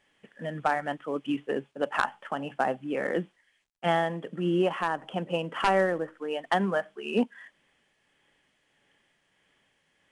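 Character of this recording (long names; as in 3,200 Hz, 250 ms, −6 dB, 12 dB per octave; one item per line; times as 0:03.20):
tremolo triangle 1.6 Hz, depth 40%
a quantiser's noise floor 12 bits, dither none
IMA ADPCM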